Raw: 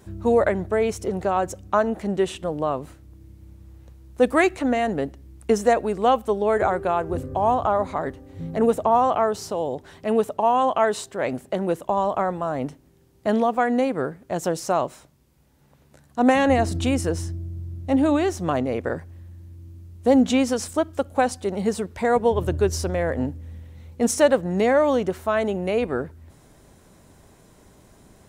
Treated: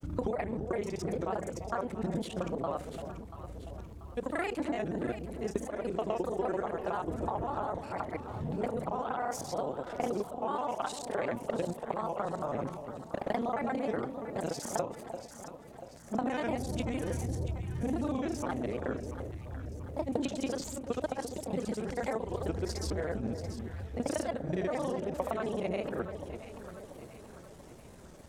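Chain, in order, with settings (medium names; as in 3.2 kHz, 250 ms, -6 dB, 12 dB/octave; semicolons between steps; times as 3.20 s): time reversed locally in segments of 31 ms; compression 10:1, threshold -29 dBFS, peak gain reduction 17.5 dB; granulator, pitch spread up and down by 3 st; echo whose repeats swap between lows and highs 343 ms, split 810 Hz, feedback 69%, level -7.5 dB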